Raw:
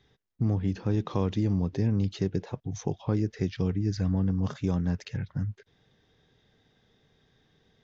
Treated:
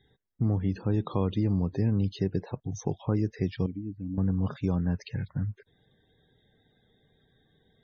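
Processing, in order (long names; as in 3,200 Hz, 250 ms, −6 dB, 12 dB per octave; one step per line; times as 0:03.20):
spectral peaks only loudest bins 64
0:03.66–0:04.18: formant resonators in series i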